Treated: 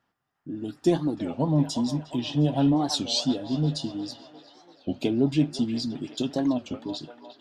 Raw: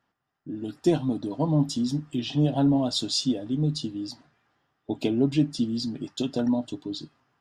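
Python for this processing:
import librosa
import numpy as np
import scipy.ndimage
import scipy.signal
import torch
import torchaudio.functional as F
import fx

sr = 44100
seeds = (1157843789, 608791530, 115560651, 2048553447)

y = fx.echo_wet_bandpass(x, sr, ms=356, feedback_pct=57, hz=1300.0, wet_db=-5.0)
y = fx.record_warp(y, sr, rpm=33.33, depth_cents=250.0)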